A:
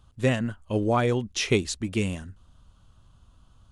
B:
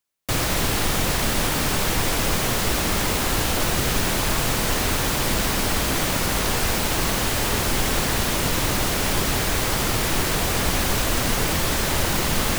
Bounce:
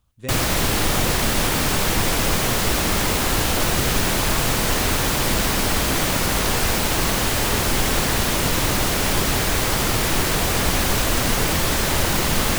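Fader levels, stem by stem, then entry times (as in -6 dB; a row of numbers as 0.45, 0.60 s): -10.5, +2.0 dB; 0.00, 0.00 s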